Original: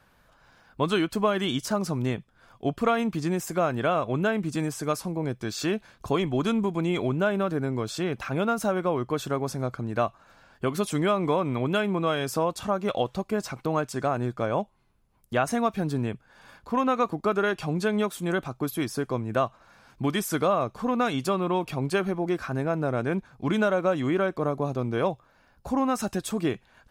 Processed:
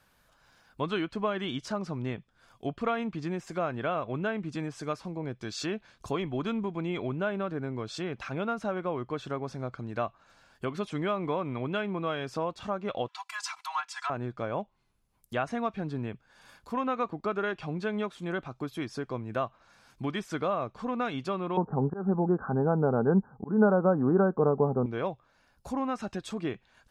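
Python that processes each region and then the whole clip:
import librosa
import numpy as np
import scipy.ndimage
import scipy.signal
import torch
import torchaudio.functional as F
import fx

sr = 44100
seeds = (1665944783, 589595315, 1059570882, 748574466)

y = fx.chain(x, sr, fx.steep_highpass(hz=790.0, slope=96),
    fx.comb(ms=3.0, depth=0.97),
    fx.leveller(passes=1), at=(13.08, 14.1))
y = fx.chain(y, sr, fx.small_body(hz=(200.0, 430.0, 800.0), ring_ms=30, db=13),
    fx.auto_swell(attack_ms=224.0),
    fx.steep_lowpass(hz=1600.0, slope=96), at=(21.57, 24.86))
y = fx.env_lowpass_down(y, sr, base_hz=2700.0, full_db=-24.5)
y = fx.high_shelf(y, sr, hz=3100.0, db=8.5)
y = F.gain(torch.from_numpy(y), -6.5).numpy()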